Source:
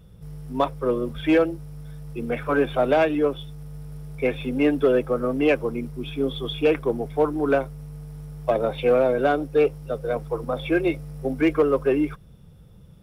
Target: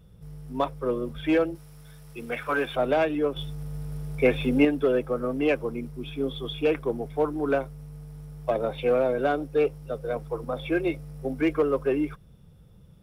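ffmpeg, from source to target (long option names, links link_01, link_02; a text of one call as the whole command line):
ffmpeg -i in.wav -filter_complex "[0:a]asettb=1/sr,asplit=3[link_01][link_02][link_03];[link_01]atrim=end=1.554[link_04];[link_02]atrim=start=1.55:end=2.76,asetpts=PTS-STARTPTS,afade=type=in:duration=0.004:curve=qsin,afade=type=out:start_time=1.206:duration=0.004:curve=qsin,tiltshelf=frequency=700:gain=-6.5[link_05];[link_03]atrim=start=2.756[link_06];[link_04][link_05]acrossfade=duration=0.004:curve1=hsin:curve2=qsin[link_07];[link_07][link_06]acrossfade=duration=0.004:curve1=qsin:curve2=hsin,asettb=1/sr,asplit=3[link_08][link_09][link_10];[link_08]atrim=end=3.364[link_11];[link_09]atrim=start=3.36:end=4.65,asetpts=PTS-STARTPTS,afade=type=in:duration=0.004:curve=qsin,afade=type=out:start_time=1.286:duration=0.004:curve=qsin,acontrast=81[link_12];[link_10]atrim=start=4.646[link_13];[link_11][link_12]acrossfade=duration=0.004:curve1=hsin:curve2=qsin[link_14];[link_14][link_13]acrossfade=duration=0.004:curve1=qsin:curve2=hsin,volume=-4dB" out.wav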